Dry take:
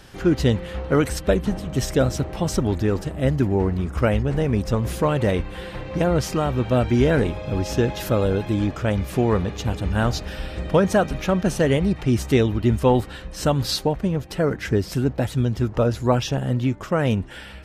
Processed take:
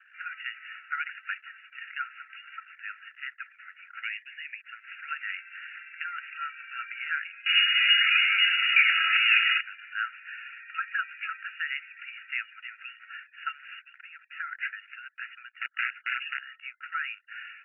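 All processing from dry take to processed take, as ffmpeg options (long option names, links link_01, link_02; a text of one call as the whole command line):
ffmpeg -i in.wav -filter_complex "[0:a]asettb=1/sr,asplit=3[link_01][link_02][link_03];[link_01]atrim=end=4.024[link_04];[link_02]atrim=start=4.02:end=4.61,asetpts=PTS-STARTPTS,afade=type=in:duration=0.004:curve=qsin,afade=type=out:start_time=0.586:duration=0.004:curve=qsin,asuperpass=centerf=4600:order=12:qfactor=0.52,aemphasis=mode=production:type=cd[link_05];[link_03]atrim=start=4.606[link_06];[link_04][link_05]acrossfade=duration=0.004:curve1=hsin:curve2=qsin[link_07];[link_07][link_06]acrossfade=duration=0.004:curve1=qsin:curve2=hsin,asettb=1/sr,asplit=3[link_08][link_09][link_10];[link_08]atrim=end=7.464[link_11];[link_09]atrim=start=7.46:end=9.61,asetpts=PTS-STARTPTS,afade=type=in:duration=0.004:curve=qsin,afade=type=out:start_time=2.146:duration=0.004:curve=qsin,asplit=2[link_12][link_13];[link_13]adelay=28,volume=-12dB[link_14];[link_12][link_14]amix=inputs=2:normalize=0,atrim=end_sample=94815,asplit=2[link_15][link_16];[link_16]highpass=frequency=720:poles=1,volume=32dB,asoftclip=type=tanh:threshold=-6dB[link_17];[link_15][link_17]amix=inputs=2:normalize=0,lowpass=frequency=2600:poles=1,volume=-6dB,lowpass=frequency=3100:width_type=q:width=0.5098,lowpass=frequency=3100:width_type=q:width=0.6013,lowpass=frequency=3100:width_type=q:width=0.9,lowpass=frequency=3100:width_type=q:width=2.563,afreqshift=-3700[link_18];[link_10]atrim=start=9.606[link_19];[link_11][link_18]acrossfade=duration=0.004:curve1=hsin:curve2=qsin[link_20];[link_20][link_19]acrossfade=duration=0.004:curve1=qsin:curve2=hsin,asettb=1/sr,asplit=3[link_21][link_22][link_23];[link_21]atrim=end=15.574[link_24];[link_22]atrim=start=15.57:end=16.39,asetpts=PTS-STARTPTS,afade=type=in:duration=0.004:curve=qsin,afade=type=out:start_time=0.816:duration=0.004:curve=qsin,highpass=frequency=190:width=0.5412,highpass=frequency=190:width=1.3066,aeval=exprs='(mod(7.5*val(0)+1,2)-1)/7.5':channel_layout=same[link_25];[link_23]atrim=start=16.386[link_26];[link_24][link_25]acrossfade=duration=0.004:curve1=hsin:curve2=qsin[link_27];[link_27][link_26]acrossfade=duration=0.004:curve1=qsin:curve2=hsin,afftfilt=real='re*between(b*sr/4096,1300,2900)':imag='im*between(b*sr/4096,1300,2900)':win_size=4096:overlap=0.75,anlmdn=0.001" out.wav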